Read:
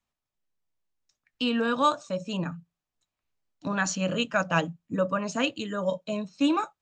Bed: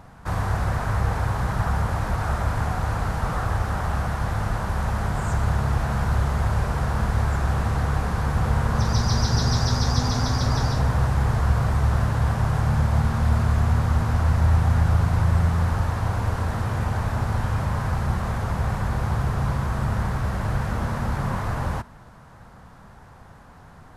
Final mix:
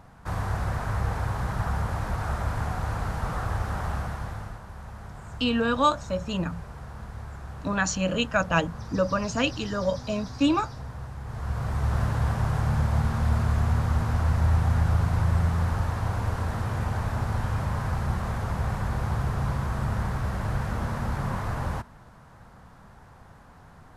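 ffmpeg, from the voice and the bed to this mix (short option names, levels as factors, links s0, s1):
-filter_complex "[0:a]adelay=4000,volume=1.19[s0];[1:a]volume=2.66,afade=t=out:st=3.88:d=0.73:silence=0.251189,afade=t=in:st=11.24:d=0.79:silence=0.223872[s1];[s0][s1]amix=inputs=2:normalize=0"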